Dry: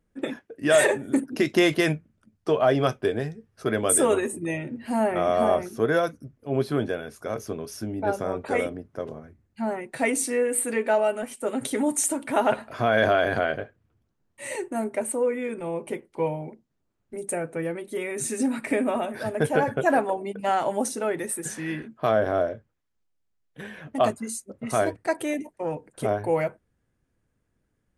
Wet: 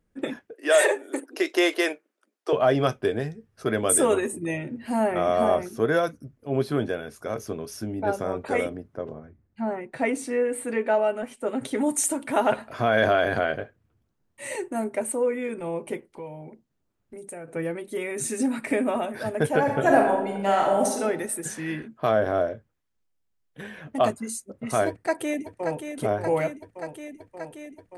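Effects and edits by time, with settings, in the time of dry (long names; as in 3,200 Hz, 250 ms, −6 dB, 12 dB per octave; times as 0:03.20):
0:00.53–0:02.53: Butterworth high-pass 340 Hz
0:08.94–0:11.80: low-pass filter 1,600 Hz → 3,400 Hz 6 dB per octave
0:16.06–0:17.48: downward compressor 2.5 to 1, threshold −40 dBFS
0:19.60–0:21.02: thrown reverb, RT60 0.86 s, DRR 0.5 dB
0:24.88–0:25.90: delay throw 580 ms, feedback 80%, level −7.5 dB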